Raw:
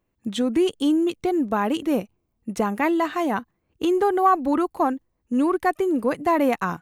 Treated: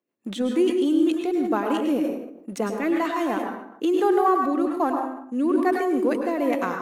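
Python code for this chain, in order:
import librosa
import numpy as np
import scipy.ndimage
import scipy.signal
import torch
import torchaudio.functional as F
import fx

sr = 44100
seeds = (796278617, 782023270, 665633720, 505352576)

p1 = fx.ladder_highpass(x, sr, hz=200.0, resonance_pct=20)
p2 = np.sign(p1) * np.maximum(np.abs(p1) - 10.0 ** (-44.0 / 20.0), 0.0)
p3 = p1 + F.gain(torch.from_numpy(p2), -5.0).numpy()
p4 = fx.rotary_switch(p3, sr, hz=6.3, then_hz=1.1, switch_at_s=1.86)
p5 = fx.rev_plate(p4, sr, seeds[0], rt60_s=0.67, hf_ratio=0.65, predelay_ms=90, drr_db=3.0)
y = fx.sustainer(p5, sr, db_per_s=67.0)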